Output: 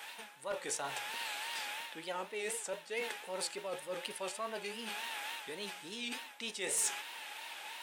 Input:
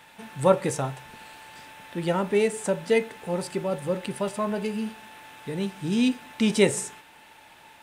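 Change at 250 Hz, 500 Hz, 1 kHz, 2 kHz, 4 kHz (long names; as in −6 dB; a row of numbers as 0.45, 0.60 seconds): −24.0, −16.5, −9.5, −5.5, −3.5 decibels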